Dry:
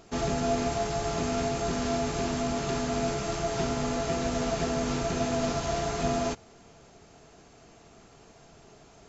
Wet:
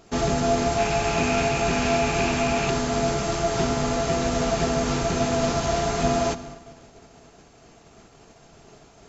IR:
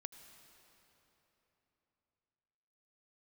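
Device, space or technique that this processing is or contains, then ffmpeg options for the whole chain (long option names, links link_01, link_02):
keyed gated reverb: -filter_complex "[0:a]asplit=3[link_01][link_02][link_03];[1:a]atrim=start_sample=2205[link_04];[link_02][link_04]afir=irnorm=-1:irlink=0[link_05];[link_03]apad=whole_len=400707[link_06];[link_05][link_06]sidechaingate=range=-33dB:threshold=-52dB:ratio=16:detection=peak,volume=4.5dB[link_07];[link_01][link_07]amix=inputs=2:normalize=0,asettb=1/sr,asplit=3[link_08][link_09][link_10];[link_08]atrim=end=0.784[link_11];[link_09]atrim=start=0.78:end=2.7,asetpts=PTS-STARTPTS,afade=type=in:duration=0.004:curve=qsin,afade=type=out:start_time=1.916:duration=0.004:curve=qsin,equalizer=frequency=800:width_type=o:width=0.33:gain=4,equalizer=frequency=1600:width_type=o:width=0.33:gain=3,equalizer=frequency=2500:width_type=o:width=0.33:gain=12[link_12];[link_10]atrim=start=2.696[link_13];[link_11][link_12]acrossfade=duration=0.004:curve1=hsin:curve2=qsin[link_14];[link_14][link_13]acrossfade=duration=0.004:curve1=qsin:curve2=hsin"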